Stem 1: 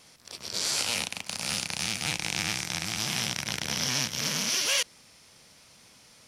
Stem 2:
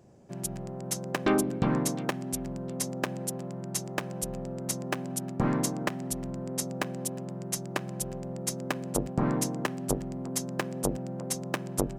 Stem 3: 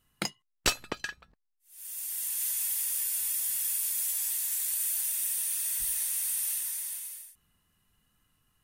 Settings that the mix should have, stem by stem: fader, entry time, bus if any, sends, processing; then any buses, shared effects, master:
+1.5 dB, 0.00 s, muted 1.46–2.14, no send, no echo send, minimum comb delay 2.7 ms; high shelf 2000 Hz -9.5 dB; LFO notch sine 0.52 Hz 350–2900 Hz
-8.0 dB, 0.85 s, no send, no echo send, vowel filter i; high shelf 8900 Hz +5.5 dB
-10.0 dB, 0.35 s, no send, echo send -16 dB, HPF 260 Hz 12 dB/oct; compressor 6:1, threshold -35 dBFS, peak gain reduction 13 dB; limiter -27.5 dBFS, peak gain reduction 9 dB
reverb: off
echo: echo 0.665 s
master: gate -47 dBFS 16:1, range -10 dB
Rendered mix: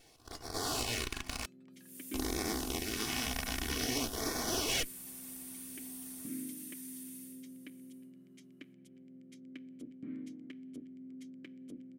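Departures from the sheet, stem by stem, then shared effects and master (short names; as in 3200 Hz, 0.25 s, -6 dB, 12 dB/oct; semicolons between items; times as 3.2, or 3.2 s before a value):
stem 3: entry 0.35 s -> 0.10 s; master: missing gate -47 dBFS 16:1, range -10 dB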